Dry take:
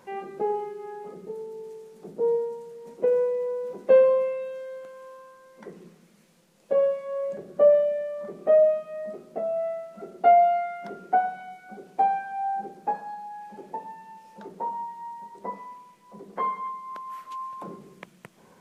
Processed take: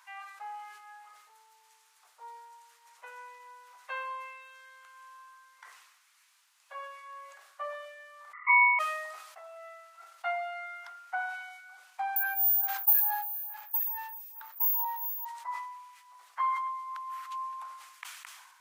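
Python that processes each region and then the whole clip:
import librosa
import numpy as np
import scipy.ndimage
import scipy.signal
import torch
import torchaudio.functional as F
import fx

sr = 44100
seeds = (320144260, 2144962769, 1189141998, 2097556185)

y = fx.chain(x, sr, fx.envelope_sharpen(power=2.0),
    fx.ring_mod(carrier_hz=1600.0), at=(8.33, 8.79))
y = fx.chain(y, sr, fx.resample_bad(factor=3, down='none', up='zero_stuff'),
    fx.stagger_phaser(hz=2.3), at=(12.16, 15.25))
y = scipy.signal.sosfilt(scipy.signal.butter(6, 990.0, 'highpass', fs=sr, output='sos'), y)
y = fx.sustainer(y, sr, db_per_s=47.0)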